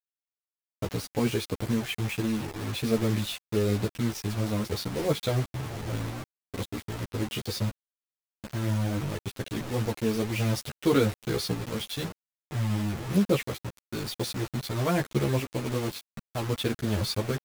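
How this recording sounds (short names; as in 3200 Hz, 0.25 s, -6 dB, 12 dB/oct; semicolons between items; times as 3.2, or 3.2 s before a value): tremolo saw up 0.52 Hz, depth 40%; a quantiser's noise floor 6-bit, dither none; a shimmering, thickened sound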